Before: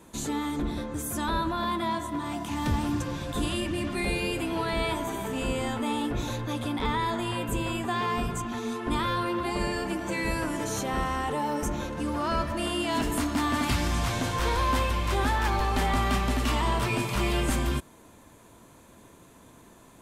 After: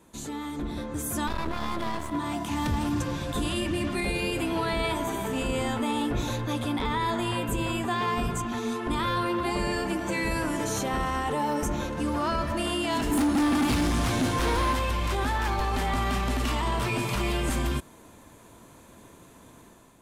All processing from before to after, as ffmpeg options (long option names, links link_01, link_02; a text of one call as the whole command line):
ffmpeg -i in.wav -filter_complex "[0:a]asettb=1/sr,asplit=3[link_01][link_02][link_03];[link_01]atrim=end=1.274[link_04];[link_02]atrim=start=1.27:end=2.11,asetpts=PTS-STARTPTS,afade=type=in:duration=0.004:curve=qsin,afade=type=out:start_time=0.836:duration=0.004:curve=qsin,lowshelf=frequency=150:gain=6,aeval=exprs='max(val(0),0)':channel_layout=same[link_05];[link_03]atrim=start=2.106[link_06];[link_04][link_05]acrossfade=duration=0.004:curve1=hsin:curve2=qsin[link_07];[link_07][link_06]acrossfade=duration=0.004:curve1=qsin:curve2=hsin,asettb=1/sr,asplit=3[link_08][link_09][link_10];[link_08]atrim=end=13.114[link_11];[link_09]atrim=start=13.11:end=14.73,asetpts=PTS-STARTPTS,afade=type=in:duration=0.004:curve=qsin,afade=type=out:start_time=1.616:duration=0.004:curve=qsin,equalizer=frequency=280:width_type=o:width=0.75:gain=9,asoftclip=type=hard:threshold=-23dB,aeval=exprs='val(0)+0.00316*sin(2*PI*9900*n/s)':channel_layout=same[link_12];[link_10]atrim=start=14.726[link_13];[link_11][link_12]acrossfade=duration=0.004:curve1=hsin:curve2=qsin[link_14];[link_14][link_13]acrossfade=duration=0.004:curve1=qsin:curve2=hsin,alimiter=limit=-21dB:level=0:latency=1:release=29,dynaudnorm=framelen=530:gausssize=3:maxgain=7dB,volume=-5dB" out.wav